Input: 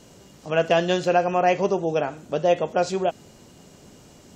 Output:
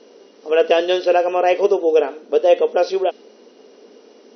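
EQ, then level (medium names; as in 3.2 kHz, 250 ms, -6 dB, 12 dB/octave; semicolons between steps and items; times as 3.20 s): dynamic bell 3.4 kHz, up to +5 dB, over -44 dBFS, Q 1.4; brick-wall FIR band-pass 210–6100 Hz; peaking EQ 450 Hz +14 dB 0.43 oct; 0.0 dB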